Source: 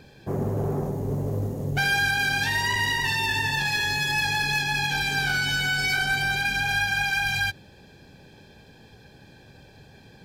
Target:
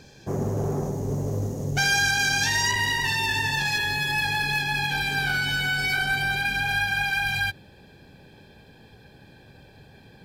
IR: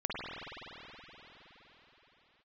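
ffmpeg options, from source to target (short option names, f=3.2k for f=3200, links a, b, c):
-af "asetnsamples=n=441:p=0,asendcmd='2.71 equalizer g 2;3.78 equalizer g -6.5',equalizer=f=6.2k:t=o:w=0.65:g=12"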